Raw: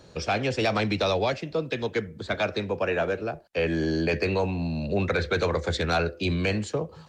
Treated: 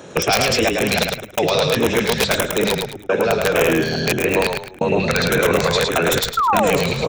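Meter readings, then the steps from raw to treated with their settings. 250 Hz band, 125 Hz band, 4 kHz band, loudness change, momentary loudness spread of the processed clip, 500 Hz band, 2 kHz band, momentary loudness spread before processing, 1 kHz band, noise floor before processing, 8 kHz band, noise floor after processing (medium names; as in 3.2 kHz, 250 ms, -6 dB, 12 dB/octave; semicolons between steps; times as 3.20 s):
+6.5 dB, +4.5 dB, +12.5 dB, +9.0 dB, 4 LU, +8.5 dB, +10.0 dB, 5 LU, +10.5 dB, -50 dBFS, no reading, -38 dBFS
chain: chunks repeated in reverse 330 ms, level -2.5 dB; feedback echo behind a high-pass 215 ms, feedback 81%, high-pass 4.9 kHz, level -14 dB; trance gate "xxxxxx.xx...xxx" 131 bpm -60 dB; painted sound fall, 6.37–6.71 s, 420–1400 Hz -26 dBFS; peaking EQ 4.7 kHz +3.5 dB 1.5 oct; in parallel at +2 dB: compressor with a negative ratio -29 dBFS, ratio -0.5; on the sum: resampled via 22.05 kHz; high-pass 180 Hz 12 dB/octave; integer overflow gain 12 dB; on a send: frequency-shifting echo 107 ms, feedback 34%, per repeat -34 Hz, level -4 dB; on the sum: LFO notch square 1.7 Hz 310–4500 Hz; trim +4.5 dB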